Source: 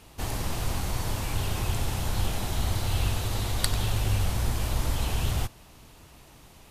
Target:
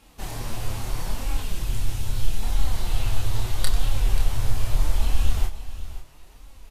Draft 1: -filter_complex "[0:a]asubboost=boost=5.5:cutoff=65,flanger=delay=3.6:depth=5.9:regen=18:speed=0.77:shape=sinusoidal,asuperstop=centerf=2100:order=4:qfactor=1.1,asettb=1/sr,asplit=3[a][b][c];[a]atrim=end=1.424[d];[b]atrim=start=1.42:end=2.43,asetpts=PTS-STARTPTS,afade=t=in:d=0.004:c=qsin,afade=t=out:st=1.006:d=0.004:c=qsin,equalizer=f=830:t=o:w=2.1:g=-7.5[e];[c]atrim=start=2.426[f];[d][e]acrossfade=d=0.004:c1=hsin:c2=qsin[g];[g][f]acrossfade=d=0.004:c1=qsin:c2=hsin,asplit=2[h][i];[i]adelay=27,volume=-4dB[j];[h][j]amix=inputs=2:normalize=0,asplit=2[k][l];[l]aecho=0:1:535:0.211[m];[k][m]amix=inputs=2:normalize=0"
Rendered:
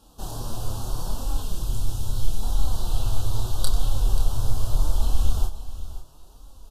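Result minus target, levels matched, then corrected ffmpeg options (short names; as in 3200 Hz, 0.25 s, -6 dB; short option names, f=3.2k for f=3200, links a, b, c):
2000 Hz band -11.0 dB
-filter_complex "[0:a]asubboost=boost=5.5:cutoff=65,flanger=delay=3.6:depth=5.9:regen=18:speed=0.77:shape=sinusoidal,asettb=1/sr,asplit=3[a][b][c];[a]atrim=end=1.424[d];[b]atrim=start=1.42:end=2.43,asetpts=PTS-STARTPTS,afade=t=in:d=0.004:c=qsin,afade=t=out:st=1.006:d=0.004:c=qsin,equalizer=f=830:t=o:w=2.1:g=-7.5[e];[c]atrim=start=2.426[f];[d][e]acrossfade=d=0.004:c1=hsin:c2=qsin[g];[g][f]acrossfade=d=0.004:c1=qsin:c2=hsin,asplit=2[h][i];[i]adelay=27,volume=-4dB[j];[h][j]amix=inputs=2:normalize=0,asplit=2[k][l];[l]aecho=0:1:535:0.211[m];[k][m]amix=inputs=2:normalize=0"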